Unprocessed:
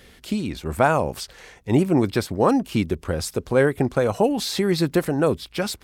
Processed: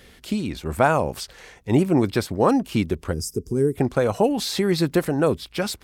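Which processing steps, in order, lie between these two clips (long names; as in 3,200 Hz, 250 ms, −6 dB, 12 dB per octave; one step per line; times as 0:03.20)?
gain on a spectral selection 0:03.13–0:03.74, 460–4,700 Hz −22 dB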